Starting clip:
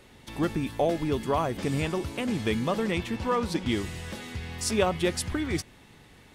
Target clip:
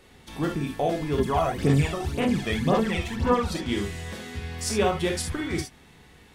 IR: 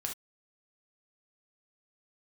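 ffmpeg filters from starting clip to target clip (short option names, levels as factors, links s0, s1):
-filter_complex "[1:a]atrim=start_sample=2205[s0];[0:a][s0]afir=irnorm=-1:irlink=0,asettb=1/sr,asplit=3[s1][s2][s3];[s1]atrim=end=1.184[s4];[s2]atrim=start=1.18:end=3.6,asetpts=PTS-STARTPTS,afade=t=in:d=0.004:c=qsin,afade=t=out:st=2.416:d=0.004:c=qsin,aphaser=in_gain=1:out_gain=1:delay=1.6:decay=0.59:speed=1.9:type=sinusoidal[s5];[s3]atrim=start=3.596[s6];[s4][s5]acrossfade=d=0.004:c1=hsin:c2=qsin[s7];[s7][s6]acrossfade=d=0.004:c1=qsin:c2=hsin"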